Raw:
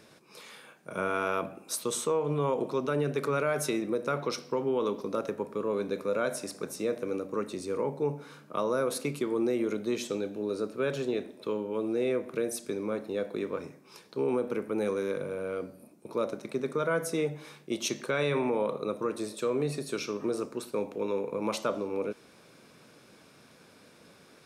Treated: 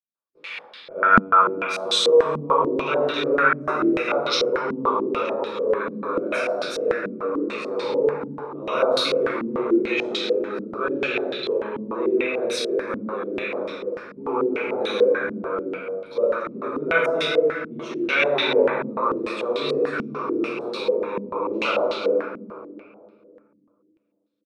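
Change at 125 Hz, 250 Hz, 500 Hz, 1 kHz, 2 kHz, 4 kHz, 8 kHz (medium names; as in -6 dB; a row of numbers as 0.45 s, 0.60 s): -0.5 dB, +6.0 dB, +8.0 dB, +12.5 dB, +14.0 dB, +14.5 dB, -1.5 dB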